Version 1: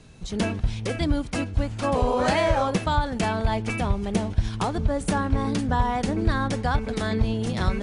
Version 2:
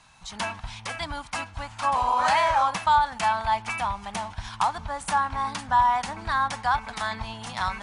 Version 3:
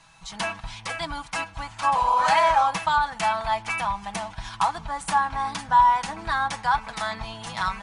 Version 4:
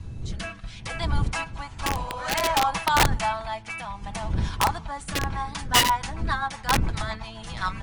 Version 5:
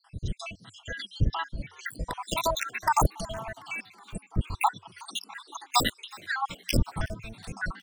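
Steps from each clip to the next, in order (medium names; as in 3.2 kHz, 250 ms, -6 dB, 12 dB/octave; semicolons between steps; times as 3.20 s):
resonant low shelf 620 Hz -13.5 dB, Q 3
comb 6.1 ms, depth 55%
wind noise 94 Hz -29 dBFS; integer overflow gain 11.5 dB; rotary cabinet horn 0.6 Hz, later 7.5 Hz, at 4.96 s
random holes in the spectrogram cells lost 78%; frequency-shifting echo 369 ms, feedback 61%, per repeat +89 Hz, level -23 dB; trim +1.5 dB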